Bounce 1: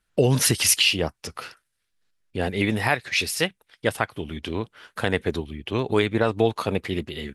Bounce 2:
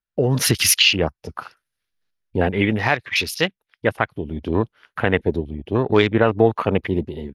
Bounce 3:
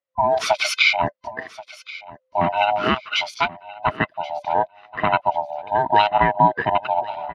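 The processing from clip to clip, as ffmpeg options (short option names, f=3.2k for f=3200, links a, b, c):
-af "afwtdn=0.02,equalizer=f=7.9k:w=4.1:g=-12.5,dynaudnorm=f=170:g=5:m=16dB,volume=-1dB"
-af "afftfilt=real='real(if(lt(b,1008),b+24*(1-2*mod(floor(b/24),2)),b),0)':imag='imag(if(lt(b,1008),b+24*(1-2*mod(floor(b/24),2)),b),0)':win_size=2048:overlap=0.75,highpass=110,lowpass=3.8k,aecho=1:1:1081|2162:0.112|0.0303"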